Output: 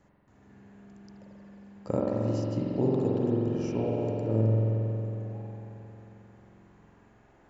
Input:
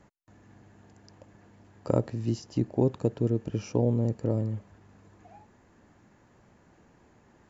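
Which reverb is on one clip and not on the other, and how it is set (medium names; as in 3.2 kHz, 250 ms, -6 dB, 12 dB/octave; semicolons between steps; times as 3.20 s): spring tank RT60 3.5 s, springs 45 ms, chirp 35 ms, DRR -5.5 dB; trim -5.5 dB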